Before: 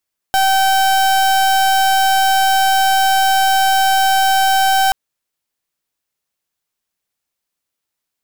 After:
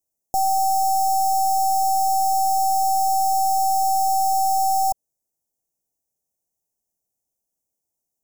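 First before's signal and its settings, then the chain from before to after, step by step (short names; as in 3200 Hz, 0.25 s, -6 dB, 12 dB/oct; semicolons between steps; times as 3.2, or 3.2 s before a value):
pulse 772 Hz, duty 36% -13 dBFS 4.58 s
elliptic band-stop 780–6100 Hz, stop band 50 dB; limiter -12.5 dBFS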